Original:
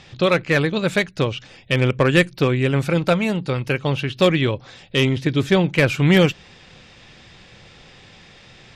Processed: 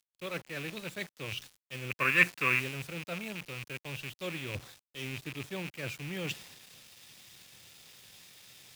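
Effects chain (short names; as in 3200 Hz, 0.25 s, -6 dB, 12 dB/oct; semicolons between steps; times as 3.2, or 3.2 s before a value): rattling part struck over -25 dBFS, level -11 dBFS; HPF 87 Hz 24 dB/oct; high shelf 3300 Hz +7 dB; reverse; compressor 5:1, threshold -32 dBFS, peak gain reduction 20 dB; reverse; spectral gain 1.91–2.59, 990–2800 Hz +12 dB; on a send at -22 dB: reverb RT60 0.55 s, pre-delay 5 ms; on the sum: bit-crush 7-bit; three-band expander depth 70%; gain -6 dB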